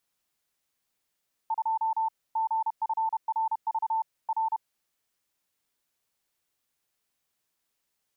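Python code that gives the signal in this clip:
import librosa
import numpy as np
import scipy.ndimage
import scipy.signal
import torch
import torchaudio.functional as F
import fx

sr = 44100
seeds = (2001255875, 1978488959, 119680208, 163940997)

y = fx.morse(sr, text='2 GFRV R', wpm=31, hz=890.0, level_db=-24.0)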